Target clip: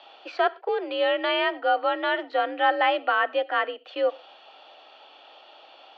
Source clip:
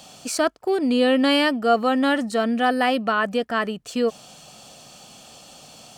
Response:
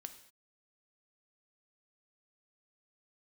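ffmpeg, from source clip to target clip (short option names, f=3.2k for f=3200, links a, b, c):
-filter_complex "[0:a]asettb=1/sr,asplit=3[a][b][c];[a]atrim=end=0.684[d];[b]atrim=start=0.68:end=2.31,asetpts=PTS-STARTPTS,afade=t=in:d=0.004:c=qsin,afade=t=out:st=1.626:d=0.004:c=qsin,acrossover=split=540|2700[e][f][g];[e]acompressor=threshold=-24dB:ratio=4[h];[f]acompressor=threshold=-21dB:ratio=4[i];[g]acompressor=threshold=-31dB:ratio=4[j];[h][i][j]amix=inputs=3:normalize=0[k];[c]atrim=start=2.306[l];[d][k]acrossfade=d=0.004:c1=hsin:c2=qsin[m];[m][l]acrossfade=d=0.004:c1=qsin:c2=hsin,asplit=2[n][o];[1:a]atrim=start_sample=2205,atrim=end_sample=6174[p];[o][p]afir=irnorm=-1:irlink=0,volume=-1.5dB[q];[n][q]amix=inputs=2:normalize=0,highpass=f=360:t=q:w=0.5412,highpass=f=360:t=q:w=1.307,lowpass=f=3.5k:t=q:w=0.5176,lowpass=f=3.5k:t=q:w=0.7071,lowpass=f=3.5k:t=q:w=1.932,afreqshift=56,volume=-4dB"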